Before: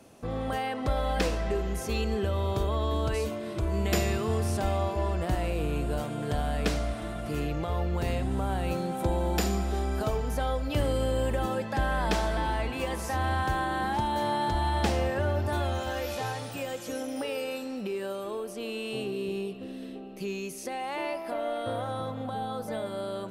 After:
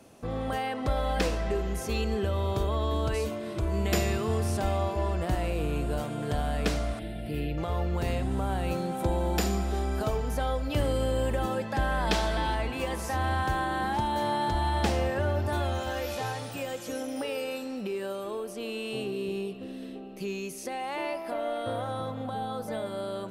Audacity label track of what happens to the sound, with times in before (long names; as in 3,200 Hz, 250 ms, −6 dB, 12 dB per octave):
6.990000	7.580000	phaser with its sweep stopped centre 2,800 Hz, stages 4
12.070000	12.550000	parametric band 3,700 Hz +5 dB 1.3 octaves